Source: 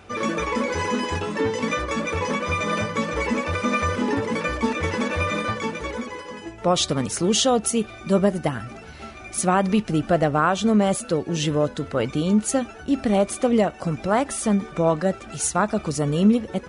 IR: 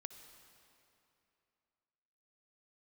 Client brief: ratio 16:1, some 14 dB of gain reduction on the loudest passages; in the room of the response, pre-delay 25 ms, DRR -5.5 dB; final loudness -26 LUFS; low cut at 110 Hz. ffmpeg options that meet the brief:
-filter_complex "[0:a]highpass=110,acompressor=threshold=-28dB:ratio=16,asplit=2[a][b];[1:a]atrim=start_sample=2205,adelay=25[c];[b][c]afir=irnorm=-1:irlink=0,volume=10dB[d];[a][d]amix=inputs=2:normalize=0"

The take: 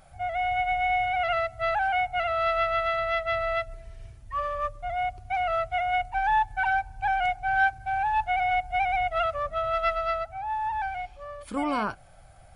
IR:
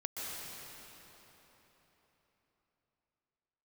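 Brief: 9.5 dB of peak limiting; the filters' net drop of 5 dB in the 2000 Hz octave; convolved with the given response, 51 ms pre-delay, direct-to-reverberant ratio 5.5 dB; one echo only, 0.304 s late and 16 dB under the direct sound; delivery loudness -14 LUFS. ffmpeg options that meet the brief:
-filter_complex "[0:a]equalizer=f=2k:t=o:g=-6.5,alimiter=level_in=0.5dB:limit=-24dB:level=0:latency=1,volume=-0.5dB,aecho=1:1:304:0.158,asplit=2[a][b];[1:a]atrim=start_sample=2205,adelay=51[c];[b][c]afir=irnorm=-1:irlink=0,volume=-8dB[d];[a][d]amix=inputs=2:normalize=0,volume=16.5dB"

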